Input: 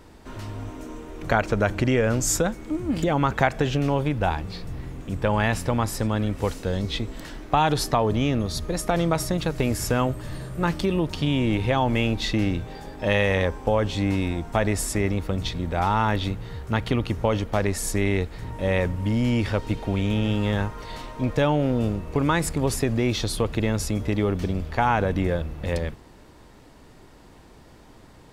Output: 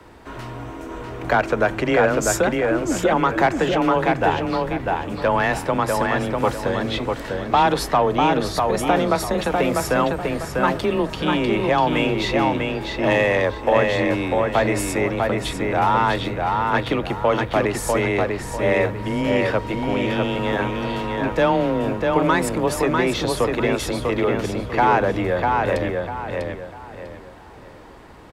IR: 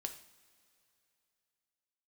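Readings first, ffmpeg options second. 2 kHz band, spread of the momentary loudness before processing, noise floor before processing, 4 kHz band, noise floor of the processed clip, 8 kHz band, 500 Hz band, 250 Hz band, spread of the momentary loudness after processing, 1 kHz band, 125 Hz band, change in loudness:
+6.0 dB, 10 LU, −49 dBFS, +3.0 dB, −39 dBFS, 0.0 dB, +6.5 dB, +2.5 dB, 7 LU, +7.0 dB, −3.0 dB, +4.0 dB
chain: -filter_complex "[0:a]acrossover=split=260|560|5500[link_01][link_02][link_03][link_04];[link_01]asoftclip=type=tanh:threshold=-29.5dB[link_05];[link_02]acontrast=34[link_06];[link_03]asplit=2[link_07][link_08];[link_08]highpass=frequency=720:poles=1,volume=15dB,asoftclip=type=tanh:threshold=-7dB[link_09];[link_07][link_09]amix=inputs=2:normalize=0,lowpass=frequency=1700:poles=1,volume=-6dB[link_10];[link_05][link_06][link_10][link_04]amix=inputs=4:normalize=0,afreqshift=18,asplit=2[link_11][link_12];[link_12]adelay=647,lowpass=frequency=4800:poles=1,volume=-3dB,asplit=2[link_13][link_14];[link_14]adelay=647,lowpass=frequency=4800:poles=1,volume=0.32,asplit=2[link_15][link_16];[link_16]adelay=647,lowpass=frequency=4800:poles=1,volume=0.32,asplit=2[link_17][link_18];[link_18]adelay=647,lowpass=frequency=4800:poles=1,volume=0.32[link_19];[link_11][link_13][link_15][link_17][link_19]amix=inputs=5:normalize=0"

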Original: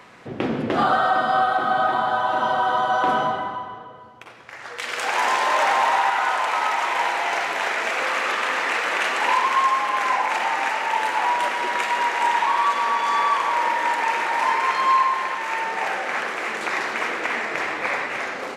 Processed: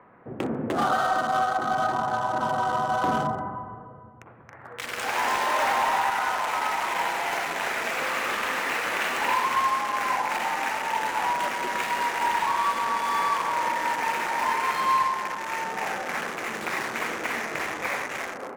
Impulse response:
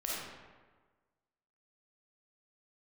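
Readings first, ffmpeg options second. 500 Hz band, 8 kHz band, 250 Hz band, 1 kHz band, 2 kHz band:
−4.0 dB, −0.5 dB, −2.0 dB, −4.5 dB, −5.0 dB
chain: -filter_complex "[0:a]acrossover=split=210|1700[link_01][link_02][link_03];[link_01]dynaudnorm=framelen=750:gausssize=5:maxgain=11.5dB[link_04];[link_03]acrusher=bits=4:mix=0:aa=0.5[link_05];[link_04][link_02][link_05]amix=inputs=3:normalize=0,volume=-4.5dB"

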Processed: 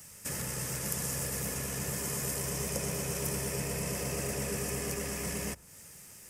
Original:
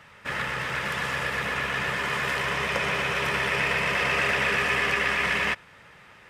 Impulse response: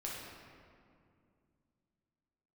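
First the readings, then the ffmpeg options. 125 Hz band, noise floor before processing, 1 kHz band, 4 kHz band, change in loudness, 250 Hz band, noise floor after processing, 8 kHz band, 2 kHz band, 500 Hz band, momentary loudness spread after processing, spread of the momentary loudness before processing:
−0.5 dB, −52 dBFS, −16.0 dB, −11.5 dB, −8.5 dB, −1.5 dB, −52 dBFS, +8.5 dB, −19.5 dB, −6.0 dB, 5 LU, 6 LU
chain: -filter_complex "[0:a]equalizer=frequency=1300:width=0.48:gain=-14.5,bandreject=frequency=60:width_type=h:width=6,bandreject=frequency=120:width_type=h:width=6,acrossover=split=800|1400[link_01][link_02][link_03];[link_02]alimiter=level_in=22.5dB:limit=-24dB:level=0:latency=1,volume=-22.5dB[link_04];[link_03]acompressor=threshold=-48dB:ratio=6[link_05];[link_01][link_04][link_05]amix=inputs=3:normalize=0,aexciter=amount=12:drive=3.6:freq=5400,volume=1dB"

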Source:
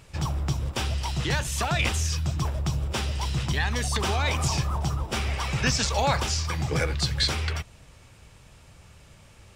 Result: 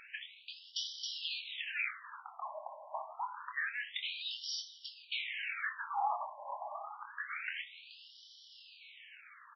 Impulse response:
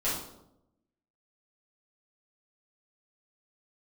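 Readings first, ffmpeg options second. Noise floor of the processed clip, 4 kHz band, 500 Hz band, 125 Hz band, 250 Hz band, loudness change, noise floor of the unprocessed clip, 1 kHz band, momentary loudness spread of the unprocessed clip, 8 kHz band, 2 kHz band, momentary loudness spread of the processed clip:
−58 dBFS, −10.5 dB, −18.5 dB, below −40 dB, below −40 dB, −13.0 dB, −53 dBFS, −8.5 dB, 5 LU, −22.0 dB, −8.0 dB, 17 LU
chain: -filter_complex "[0:a]aeval=exprs='if(lt(val(0),0),0.708*val(0),val(0))':channel_layout=same,acompressor=threshold=-35dB:ratio=12,asplit=2[link_01][link_02];[link_02]adelay=25,volume=-7dB[link_03];[link_01][link_03]amix=inputs=2:normalize=0,aecho=1:1:428:0.133,asplit=2[link_04][link_05];[1:a]atrim=start_sample=2205[link_06];[link_05][link_06]afir=irnorm=-1:irlink=0,volume=-17dB[link_07];[link_04][link_07]amix=inputs=2:normalize=0,afftfilt=real='re*between(b*sr/1024,780*pow(4200/780,0.5+0.5*sin(2*PI*0.27*pts/sr))/1.41,780*pow(4200/780,0.5+0.5*sin(2*PI*0.27*pts/sr))*1.41)':imag='im*between(b*sr/1024,780*pow(4200/780,0.5+0.5*sin(2*PI*0.27*pts/sr))/1.41,780*pow(4200/780,0.5+0.5*sin(2*PI*0.27*pts/sr))*1.41)':win_size=1024:overlap=0.75,volume=6.5dB"

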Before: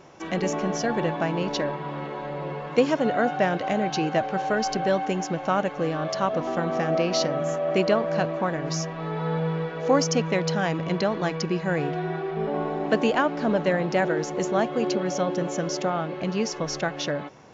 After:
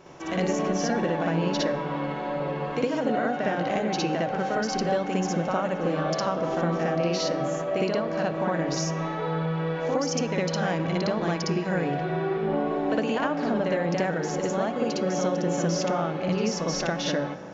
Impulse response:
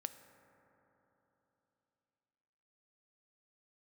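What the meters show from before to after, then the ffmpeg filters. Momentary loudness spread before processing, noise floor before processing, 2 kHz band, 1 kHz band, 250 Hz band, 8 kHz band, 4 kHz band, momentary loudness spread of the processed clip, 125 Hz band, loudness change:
6 LU, −36 dBFS, −2.0 dB, −1.5 dB, 0.0 dB, can't be measured, −1.0 dB, 3 LU, 0.0 dB, −1.0 dB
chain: -filter_complex "[0:a]bandreject=frequency=50:width_type=h:width=6,bandreject=frequency=100:width_type=h:width=6,bandreject=frequency=150:width_type=h:width=6,bandreject=frequency=200:width_type=h:width=6,acompressor=threshold=-25dB:ratio=6,asplit=2[link_01][link_02];[1:a]atrim=start_sample=2205,lowshelf=frequency=210:gain=5.5,adelay=59[link_03];[link_02][link_03]afir=irnorm=-1:irlink=0,volume=5.5dB[link_04];[link_01][link_04]amix=inputs=2:normalize=0,volume=-2dB"

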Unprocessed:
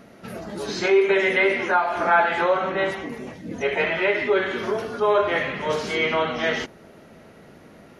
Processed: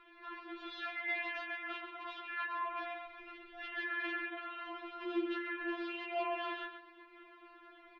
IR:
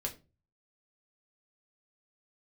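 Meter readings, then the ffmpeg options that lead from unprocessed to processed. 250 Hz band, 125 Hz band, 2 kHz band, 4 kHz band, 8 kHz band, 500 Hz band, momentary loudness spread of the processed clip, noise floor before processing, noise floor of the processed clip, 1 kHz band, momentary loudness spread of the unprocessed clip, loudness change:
−14.0 dB, below −40 dB, −15.5 dB, −16.0 dB, can't be measured, −23.5 dB, 19 LU, −48 dBFS, −59 dBFS, −17.0 dB, 14 LU, −18.0 dB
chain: -filter_complex "[0:a]equalizer=frequency=340:width_type=o:width=2.3:gain=-14,acompressor=threshold=-40dB:ratio=2.5,aeval=exprs='(mod(26.6*val(0)+1,2)-1)/26.6':channel_layout=same,asplit=2[link_01][link_02];[link_02]adelay=134,lowpass=frequency=2300:poles=1,volume=-4.5dB,asplit=2[link_03][link_04];[link_04]adelay=134,lowpass=frequency=2300:poles=1,volume=0.31,asplit=2[link_05][link_06];[link_06]adelay=134,lowpass=frequency=2300:poles=1,volume=0.31,asplit=2[link_07][link_08];[link_08]adelay=134,lowpass=frequency=2300:poles=1,volume=0.31[link_09];[link_01][link_03][link_05][link_07][link_09]amix=inputs=5:normalize=0,flanger=delay=9.6:depth=7.7:regen=66:speed=0.65:shape=sinusoidal,asplit=2[link_10][link_11];[1:a]atrim=start_sample=2205[link_12];[link_11][link_12]afir=irnorm=-1:irlink=0,volume=-11.5dB[link_13];[link_10][link_13]amix=inputs=2:normalize=0,highpass=frequency=420:width_type=q:width=0.5412,highpass=frequency=420:width_type=q:width=1.307,lowpass=frequency=3600:width_type=q:width=0.5176,lowpass=frequency=3600:width_type=q:width=0.7071,lowpass=frequency=3600:width_type=q:width=1.932,afreqshift=-270,afftfilt=real='re*4*eq(mod(b,16),0)':imag='im*4*eq(mod(b,16),0)':win_size=2048:overlap=0.75,volume=3.5dB"

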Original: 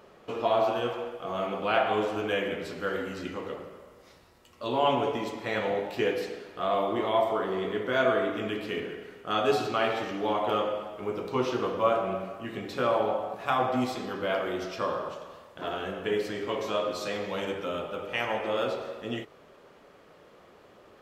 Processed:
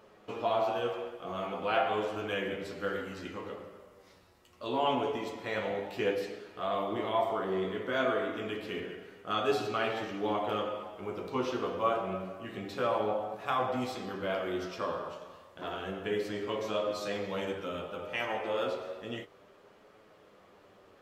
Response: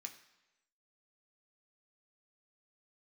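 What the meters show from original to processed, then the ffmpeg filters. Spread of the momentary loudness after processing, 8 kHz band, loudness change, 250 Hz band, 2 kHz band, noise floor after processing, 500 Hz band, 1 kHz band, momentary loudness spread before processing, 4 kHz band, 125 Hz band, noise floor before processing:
11 LU, can't be measured, −4.0 dB, −4.0 dB, −4.0 dB, −60 dBFS, −4.5 dB, −4.0 dB, 11 LU, −4.0 dB, −3.5 dB, −56 dBFS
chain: -af "flanger=delay=9.2:depth=2.6:regen=50:speed=0.3:shape=triangular"

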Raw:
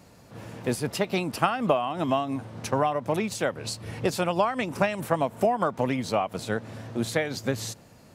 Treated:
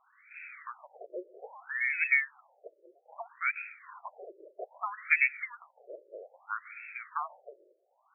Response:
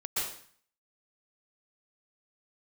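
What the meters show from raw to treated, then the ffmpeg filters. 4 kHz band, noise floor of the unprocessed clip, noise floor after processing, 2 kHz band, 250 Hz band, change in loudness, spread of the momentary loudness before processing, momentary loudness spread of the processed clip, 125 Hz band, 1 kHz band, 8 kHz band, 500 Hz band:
below −40 dB, −53 dBFS, −72 dBFS, +4.0 dB, below −30 dB, −3.5 dB, 9 LU, 24 LU, below −40 dB, −13.0 dB, below −40 dB, −21.0 dB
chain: -filter_complex "[0:a]highpass=280,lowpass=frequency=2500:width_type=q:width=0.5098,lowpass=frequency=2500:width_type=q:width=0.6013,lowpass=frequency=2500:width_type=q:width=0.9,lowpass=frequency=2500:width_type=q:width=2.563,afreqshift=-2900,asplit=2[link_01][link_02];[1:a]atrim=start_sample=2205[link_03];[link_02][link_03]afir=irnorm=-1:irlink=0,volume=-25dB[link_04];[link_01][link_04]amix=inputs=2:normalize=0,afftfilt=real='re*between(b*sr/1024,440*pow(1900/440,0.5+0.5*sin(2*PI*0.62*pts/sr))/1.41,440*pow(1900/440,0.5+0.5*sin(2*PI*0.62*pts/sr))*1.41)':imag='im*between(b*sr/1024,440*pow(1900/440,0.5+0.5*sin(2*PI*0.62*pts/sr))/1.41,440*pow(1900/440,0.5+0.5*sin(2*PI*0.62*pts/sr))*1.41)':win_size=1024:overlap=0.75"

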